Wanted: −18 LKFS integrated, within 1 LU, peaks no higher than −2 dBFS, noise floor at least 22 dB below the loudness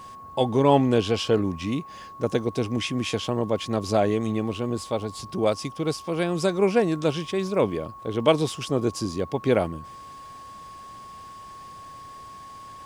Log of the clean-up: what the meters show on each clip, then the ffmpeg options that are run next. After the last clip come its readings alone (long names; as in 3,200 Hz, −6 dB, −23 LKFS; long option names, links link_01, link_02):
interfering tone 1,100 Hz; level of the tone −40 dBFS; integrated loudness −25.0 LKFS; sample peak −4.5 dBFS; target loudness −18.0 LKFS
→ -af "bandreject=frequency=1100:width=30"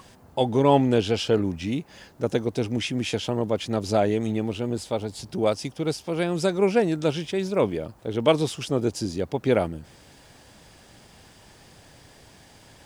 interfering tone none found; integrated loudness −25.0 LKFS; sample peak −5.0 dBFS; target loudness −18.0 LKFS
→ -af "volume=7dB,alimiter=limit=-2dB:level=0:latency=1"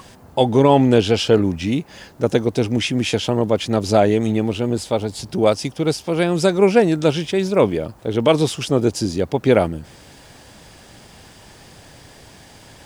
integrated loudness −18.5 LKFS; sample peak −2.0 dBFS; background noise floor −45 dBFS